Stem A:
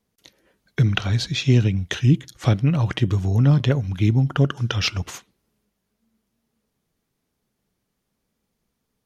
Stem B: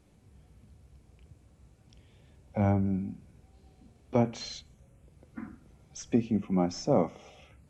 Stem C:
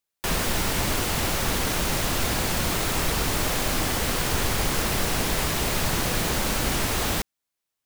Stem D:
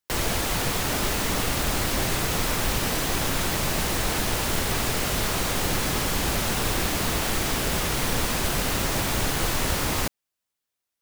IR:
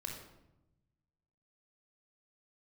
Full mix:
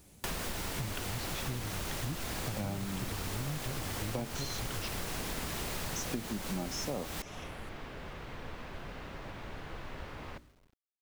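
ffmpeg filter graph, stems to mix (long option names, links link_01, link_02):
-filter_complex "[0:a]volume=-12dB[link_01];[1:a]aemphasis=mode=production:type=75kf,volume=2dB[link_02];[2:a]volume=-5dB[link_03];[3:a]lowpass=2600,bandreject=frequency=60:width_type=h:width=6,bandreject=frequency=120:width_type=h:width=6,bandreject=frequency=180:width_type=h:width=6,bandreject=frequency=240:width_type=h:width=6,bandreject=frequency=300:width_type=h:width=6,bandreject=frequency=360:width_type=h:width=6,adelay=300,volume=-18dB,asplit=2[link_04][link_05];[link_05]volume=-15dB[link_06];[4:a]atrim=start_sample=2205[link_07];[link_06][link_07]afir=irnorm=-1:irlink=0[link_08];[link_01][link_02][link_03][link_04][link_08]amix=inputs=5:normalize=0,acrusher=bits=10:mix=0:aa=0.000001,acompressor=threshold=-34dB:ratio=6"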